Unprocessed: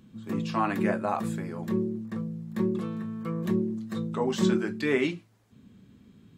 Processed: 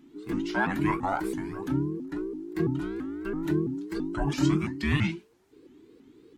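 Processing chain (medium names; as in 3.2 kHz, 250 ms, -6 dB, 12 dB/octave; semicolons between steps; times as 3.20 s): every band turned upside down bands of 500 Hz; 4.01–4.81 s: Butterworth band-stop 3.7 kHz, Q 7.2; vibrato with a chosen wave saw up 3 Hz, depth 250 cents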